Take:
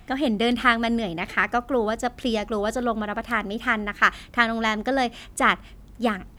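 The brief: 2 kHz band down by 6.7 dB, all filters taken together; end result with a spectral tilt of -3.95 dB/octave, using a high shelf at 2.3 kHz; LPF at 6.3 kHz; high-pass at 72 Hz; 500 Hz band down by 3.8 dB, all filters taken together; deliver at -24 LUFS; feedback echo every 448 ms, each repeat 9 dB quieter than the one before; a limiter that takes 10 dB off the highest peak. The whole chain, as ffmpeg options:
-af "highpass=72,lowpass=6300,equalizer=f=500:t=o:g=-4,equalizer=f=2000:t=o:g=-5.5,highshelf=f=2300:g=-5.5,alimiter=limit=0.112:level=0:latency=1,aecho=1:1:448|896|1344|1792:0.355|0.124|0.0435|0.0152,volume=1.78"

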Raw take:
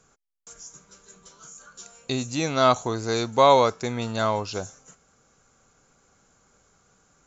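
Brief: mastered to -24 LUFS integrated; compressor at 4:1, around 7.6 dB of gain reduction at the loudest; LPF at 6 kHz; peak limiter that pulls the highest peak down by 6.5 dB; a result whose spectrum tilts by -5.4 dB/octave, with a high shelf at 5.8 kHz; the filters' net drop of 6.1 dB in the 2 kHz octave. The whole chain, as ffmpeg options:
-af "lowpass=6000,equalizer=f=2000:t=o:g=-8,highshelf=f=5800:g=-4.5,acompressor=threshold=0.0891:ratio=4,volume=2.11,alimiter=limit=0.251:level=0:latency=1"

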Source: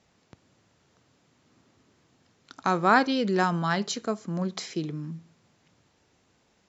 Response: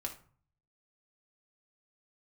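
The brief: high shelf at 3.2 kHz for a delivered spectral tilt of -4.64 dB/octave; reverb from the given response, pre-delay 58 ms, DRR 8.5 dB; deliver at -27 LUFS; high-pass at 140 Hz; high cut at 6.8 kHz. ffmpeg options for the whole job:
-filter_complex "[0:a]highpass=140,lowpass=6800,highshelf=f=3200:g=3.5,asplit=2[s0][s1];[1:a]atrim=start_sample=2205,adelay=58[s2];[s1][s2]afir=irnorm=-1:irlink=0,volume=0.398[s3];[s0][s3]amix=inputs=2:normalize=0,volume=0.891"

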